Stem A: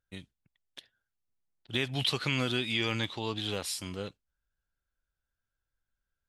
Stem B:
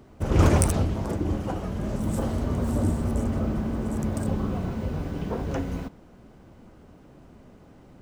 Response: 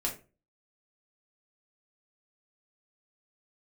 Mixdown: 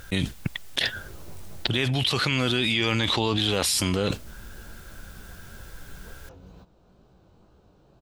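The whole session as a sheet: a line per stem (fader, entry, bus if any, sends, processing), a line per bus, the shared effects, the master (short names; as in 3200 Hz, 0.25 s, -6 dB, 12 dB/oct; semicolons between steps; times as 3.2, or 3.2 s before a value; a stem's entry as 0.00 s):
+2.5 dB, 0.00 s, no send, fast leveller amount 100%
-3.0 dB, 0.75 s, no send, thirty-one-band EQ 250 Hz -11 dB, 2000 Hz -11 dB, 4000 Hz +7 dB, 10000 Hz -10 dB; compressor, threshold -32 dBFS, peak gain reduction 17 dB; chorus 2.2 Hz, delay 16 ms, depth 6.2 ms; auto duck -8 dB, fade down 1.95 s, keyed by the first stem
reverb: off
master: dry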